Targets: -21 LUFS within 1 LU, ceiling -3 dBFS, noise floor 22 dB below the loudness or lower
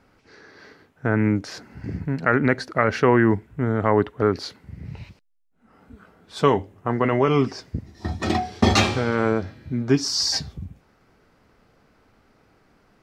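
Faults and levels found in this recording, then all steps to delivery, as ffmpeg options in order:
loudness -22.0 LUFS; peak -3.0 dBFS; loudness target -21.0 LUFS
-> -af "volume=1dB,alimiter=limit=-3dB:level=0:latency=1"

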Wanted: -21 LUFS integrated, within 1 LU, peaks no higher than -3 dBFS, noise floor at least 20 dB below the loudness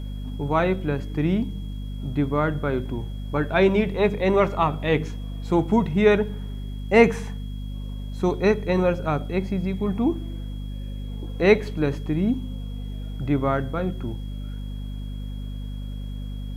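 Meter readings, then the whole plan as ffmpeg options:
hum 50 Hz; harmonics up to 250 Hz; hum level -29 dBFS; steady tone 3300 Hz; tone level -51 dBFS; loudness -23.5 LUFS; peak -1.5 dBFS; loudness target -21.0 LUFS
-> -af "bandreject=f=50:t=h:w=6,bandreject=f=100:t=h:w=6,bandreject=f=150:t=h:w=6,bandreject=f=200:t=h:w=6,bandreject=f=250:t=h:w=6"
-af "bandreject=f=3.3k:w=30"
-af "volume=2.5dB,alimiter=limit=-3dB:level=0:latency=1"

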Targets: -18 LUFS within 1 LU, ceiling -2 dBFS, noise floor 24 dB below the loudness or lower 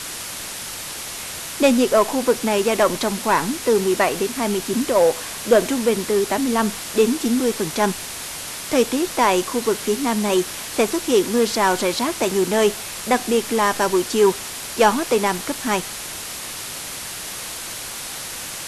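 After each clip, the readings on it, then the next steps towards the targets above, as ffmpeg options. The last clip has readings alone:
hum 50 Hz; harmonics up to 150 Hz; hum level -53 dBFS; noise floor -32 dBFS; noise floor target -45 dBFS; loudness -20.5 LUFS; peak -3.0 dBFS; loudness target -18.0 LUFS
-> -af "bandreject=f=50:t=h:w=4,bandreject=f=100:t=h:w=4,bandreject=f=150:t=h:w=4"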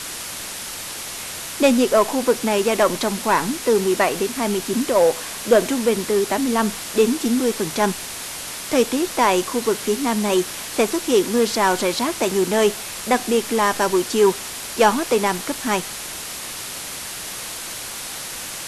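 hum none; noise floor -32 dBFS; noise floor target -45 dBFS
-> -af "afftdn=nr=13:nf=-32"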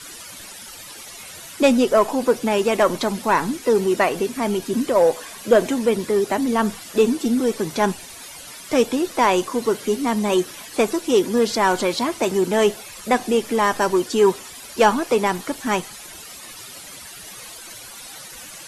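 noise floor -39 dBFS; noise floor target -44 dBFS
-> -af "afftdn=nr=6:nf=-39"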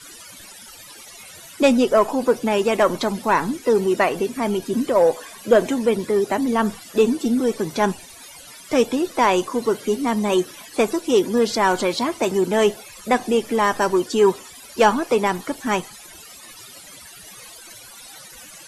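noise floor -42 dBFS; noise floor target -44 dBFS
-> -af "afftdn=nr=6:nf=-42"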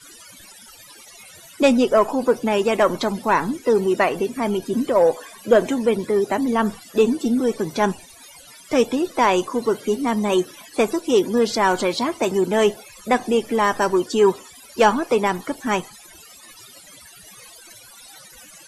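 noise floor -45 dBFS; loudness -20.0 LUFS; peak -3.0 dBFS; loudness target -18.0 LUFS
-> -af "volume=2dB,alimiter=limit=-2dB:level=0:latency=1"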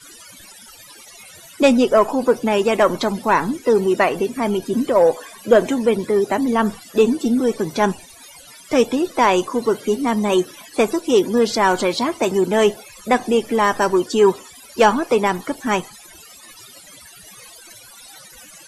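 loudness -18.0 LUFS; peak -2.0 dBFS; noise floor -43 dBFS

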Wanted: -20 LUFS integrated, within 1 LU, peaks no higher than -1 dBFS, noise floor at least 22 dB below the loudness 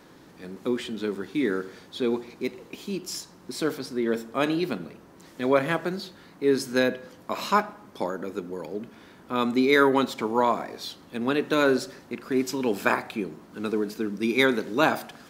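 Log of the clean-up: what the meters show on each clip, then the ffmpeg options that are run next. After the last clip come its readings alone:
loudness -26.5 LUFS; peak -5.0 dBFS; loudness target -20.0 LUFS
-> -af "volume=6.5dB,alimiter=limit=-1dB:level=0:latency=1"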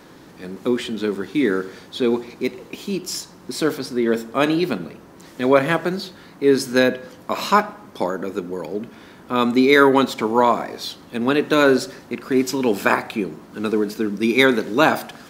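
loudness -20.5 LUFS; peak -1.0 dBFS; noise floor -45 dBFS

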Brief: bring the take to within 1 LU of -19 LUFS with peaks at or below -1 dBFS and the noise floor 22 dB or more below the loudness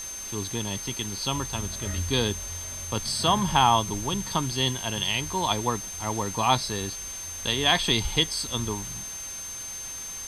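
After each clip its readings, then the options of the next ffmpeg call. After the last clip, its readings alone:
steady tone 6300 Hz; tone level -35 dBFS; noise floor -37 dBFS; noise floor target -49 dBFS; loudness -26.5 LUFS; peak -6.5 dBFS; loudness target -19.0 LUFS
-> -af "bandreject=f=6.3k:w=30"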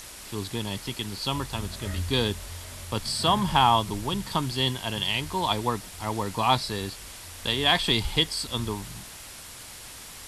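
steady tone none; noise floor -43 dBFS; noise floor target -49 dBFS
-> -af "afftdn=nr=6:nf=-43"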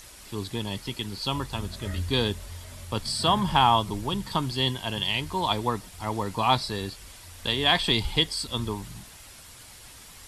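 noise floor -48 dBFS; noise floor target -49 dBFS
-> -af "afftdn=nr=6:nf=-48"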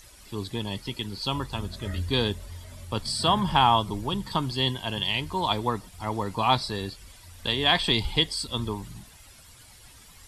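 noise floor -51 dBFS; loudness -26.5 LUFS; peak -6.5 dBFS; loudness target -19.0 LUFS
-> -af "volume=7.5dB,alimiter=limit=-1dB:level=0:latency=1"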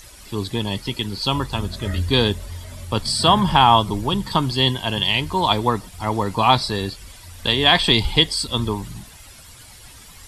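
loudness -19.5 LUFS; peak -1.0 dBFS; noise floor -44 dBFS

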